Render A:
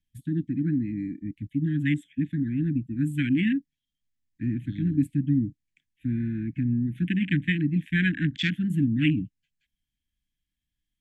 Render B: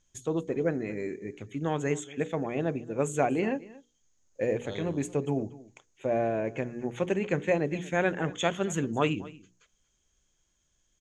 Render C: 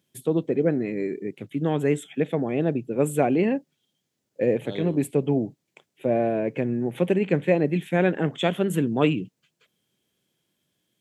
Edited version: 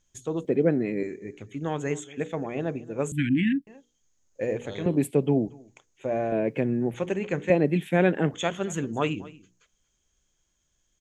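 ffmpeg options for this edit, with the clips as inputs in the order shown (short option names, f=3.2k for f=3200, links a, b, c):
-filter_complex "[2:a]asplit=4[a][b][c][d];[1:a]asplit=6[e][f][g][h][i][j];[e]atrim=end=0.452[k];[a]atrim=start=0.448:end=1.032[l];[f]atrim=start=1.028:end=3.122[m];[0:a]atrim=start=3.118:end=3.672[n];[g]atrim=start=3.668:end=4.862[o];[b]atrim=start=4.858:end=5.482[p];[h]atrim=start=5.478:end=6.322[q];[c]atrim=start=6.318:end=6.942[r];[i]atrim=start=6.938:end=7.502[s];[d]atrim=start=7.498:end=8.342[t];[j]atrim=start=8.338[u];[k][l]acrossfade=d=0.004:c1=hsin:c2=hsin[v];[v][m]acrossfade=d=0.004:c1=hsin:c2=hsin[w];[w][n]acrossfade=d=0.004:c1=hsin:c2=hsin[x];[x][o]acrossfade=d=0.004:c1=hsin:c2=hsin[y];[y][p]acrossfade=d=0.004:c1=hsin:c2=hsin[z];[z][q]acrossfade=d=0.004:c1=hsin:c2=hsin[aa];[aa][r]acrossfade=d=0.004:c1=hsin:c2=hsin[ab];[ab][s]acrossfade=d=0.004:c1=hsin:c2=hsin[ac];[ac][t]acrossfade=d=0.004:c1=hsin:c2=hsin[ad];[ad][u]acrossfade=d=0.004:c1=hsin:c2=hsin"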